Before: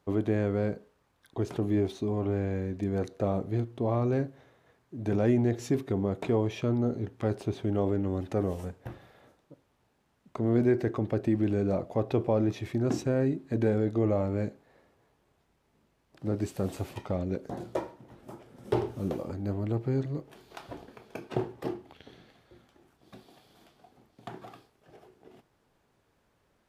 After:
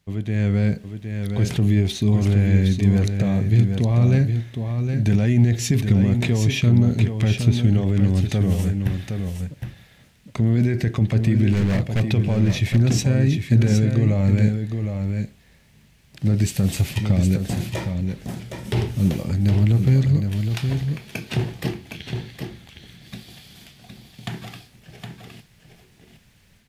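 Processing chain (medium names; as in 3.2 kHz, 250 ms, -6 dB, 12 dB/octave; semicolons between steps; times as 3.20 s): 11.53–12.00 s: hard clipper -29.5 dBFS, distortion -20 dB; level rider gain up to 12 dB; peak limiter -10.5 dBFS, peak gain reduction 7 dB; high-order bell 620 Hz -14.5 dB 2.7 oct; on a send: delay 764 ms -6.5 dB; on the sum: trim +6 dB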